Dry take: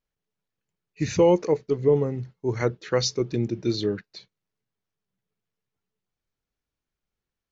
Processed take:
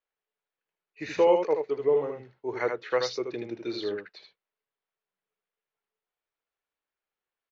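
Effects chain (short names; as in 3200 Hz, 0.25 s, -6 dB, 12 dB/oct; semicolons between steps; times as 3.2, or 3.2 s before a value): three-band isolator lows -22 dB, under 400 Hz, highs -21 dB, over 3800 Hz; on a send: echo 78 ms -5.5 dB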